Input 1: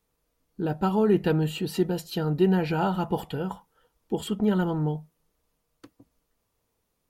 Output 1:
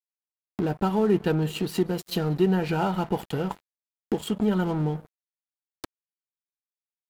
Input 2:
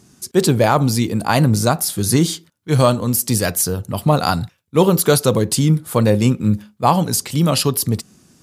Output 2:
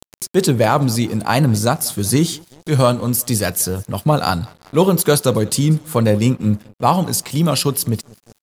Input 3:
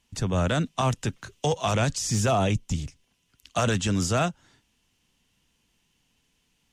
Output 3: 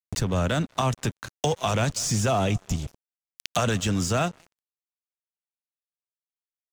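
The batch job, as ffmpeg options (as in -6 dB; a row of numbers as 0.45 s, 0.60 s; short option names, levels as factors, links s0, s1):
-af "aecho=1:1:189|378|567:0.0668|0.0334|0.0167,aeval=exprs='sgn(val(0))*max(abs(val(0))-0.00841,0)':c=same,acompressor=mode=upward:threshold=0.1:ratio=2.5"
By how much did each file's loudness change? 0.0 LU, -0.5 LU, 0.0 LU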